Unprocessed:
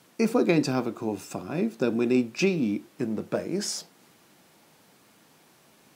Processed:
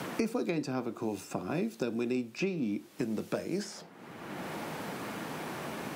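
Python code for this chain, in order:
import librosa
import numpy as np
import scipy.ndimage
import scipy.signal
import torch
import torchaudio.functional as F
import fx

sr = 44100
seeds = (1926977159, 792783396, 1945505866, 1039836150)

y = fx.band_squash(x, sr, depth_pct=100)
y = F.gain(torch.from_numpy(y), -7.0).numpy()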